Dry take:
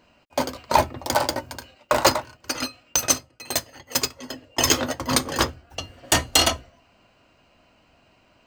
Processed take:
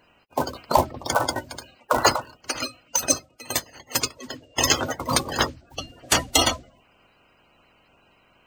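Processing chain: bin magnitudes rounded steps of 30 dB

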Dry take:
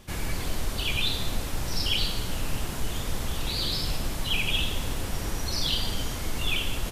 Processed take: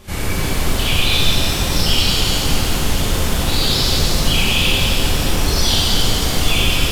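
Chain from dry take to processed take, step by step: on a send: reverse echo 39 ms -16.5 dB; on the sum: maximiser +16 dB; shimmer reverb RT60 3.2 s, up +7 st, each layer -8 dB, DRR -6.5 dB; gain -10.5 dB

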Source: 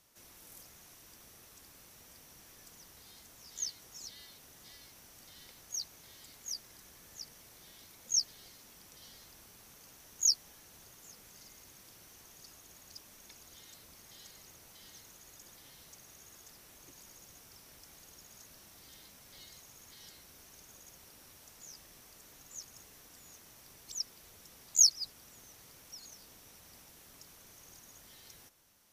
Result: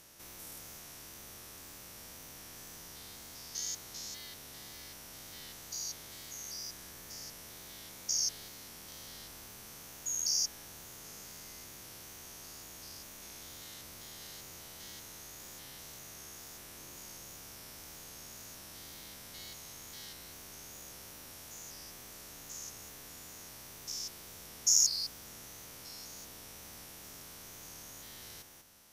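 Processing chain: stepped spectrum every 0.2 s; wow and flutter 41 cents; gain +8.5 dB

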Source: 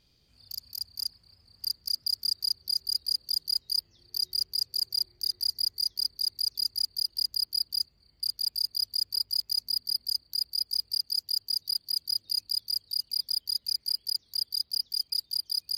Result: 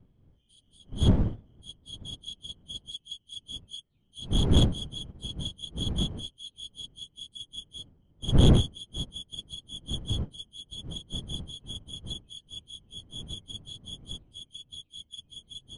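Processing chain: pitch shift by moving bins -6.5 st; wind noise 150 Hz -30 dBFS; soft clip -17.5 dBFS, distortion -12 dB; upward expander 2.5:1, over -37 dBFS; gain +6.5 dB

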